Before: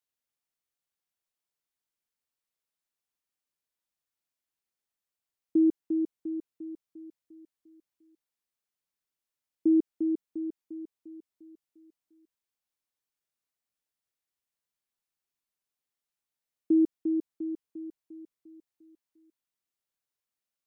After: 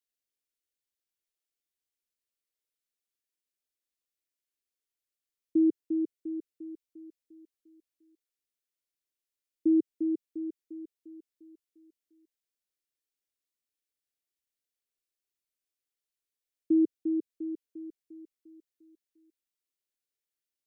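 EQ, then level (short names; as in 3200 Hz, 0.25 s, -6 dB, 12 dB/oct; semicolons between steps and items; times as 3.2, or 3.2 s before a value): dynamic EQ 120 Hz, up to +5 dB, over -42 dBFS, Q 0.94; fixed phaser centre 380 Hz, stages 4; -1.5 dB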